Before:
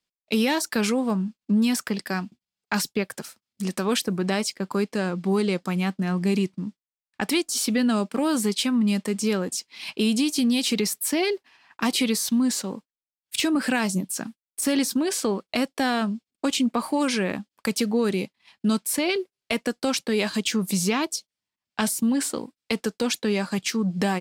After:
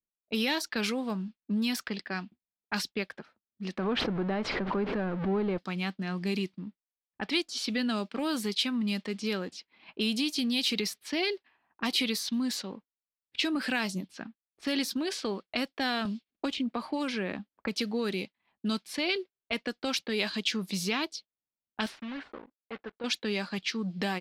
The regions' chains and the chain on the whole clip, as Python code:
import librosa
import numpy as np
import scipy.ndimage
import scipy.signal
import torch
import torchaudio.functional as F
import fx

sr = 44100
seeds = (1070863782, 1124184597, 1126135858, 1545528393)

y = fx.chain(x, sr, fx.zero_step(step_db=-25.0),
    fx.lowpass(hz=1200.0, slope=12),
    fx.pre_swell(db_per_s=53.0), at=(3.78, 5.58))
y = fx.chain(y, sr, fx.high_shelf(hz=2300.0, db=-8.5),
    fx.band_squash(depth_pct=70), at=(16.05, 17.76))
y = fx.chain(y, sr, fx.block_float(bits=3),
    fx.lowpass(hz=1900.0, slope=6),
    fx.low_shelf(hz=450.0, db=-11.0), at=(21.86, 23.04))
y = fx.env_lowpass(y, sr, base_hz=460.0, full_db=-20.0)
y = fx.graphic_eq(y, sr, hz=(125, 250, 500, 1000, 4000, 8000), db=(-9, -3, -4, -4, 5, -11))
y = F.gain(torch.from_numpy(y), -3.0).numpy()